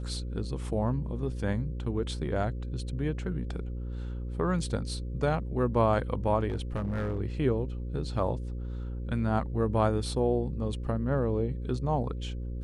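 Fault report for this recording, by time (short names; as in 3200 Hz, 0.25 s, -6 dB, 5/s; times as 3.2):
buzz 60 Hz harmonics 9 -35 dBFS
6.48–7.2 clipped -27 dBFS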